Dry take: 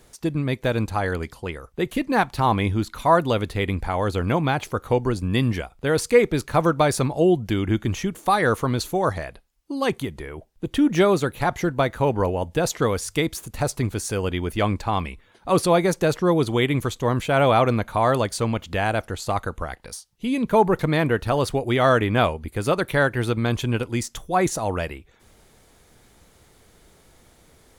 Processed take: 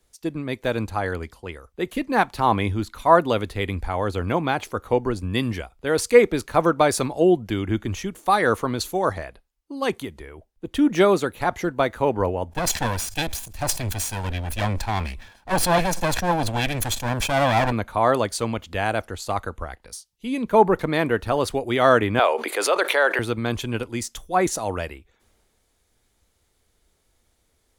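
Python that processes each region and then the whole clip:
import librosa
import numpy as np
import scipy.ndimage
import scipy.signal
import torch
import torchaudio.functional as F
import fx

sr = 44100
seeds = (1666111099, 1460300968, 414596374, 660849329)

y = fx.chain(x, sr, fx.lower_of_two(delay_ms=1.2),
    fx.sustainer(db_per_s=67.0), at=(12.49, 17.72))
y = fx.chain(y, sr, fx.highpass(hz=440.0, slope=24),
    fx.high_shelf(hz=6800.0, db=-11.0),
    fx.env_flatten(amount_pct=70), at=(22.19, 23.19))
y = fx.peak_eq(y, sr, hz=140.0, db=-7.0, octaves=0.67)
y = fx.band_widen(y, sr, depth_pct=40)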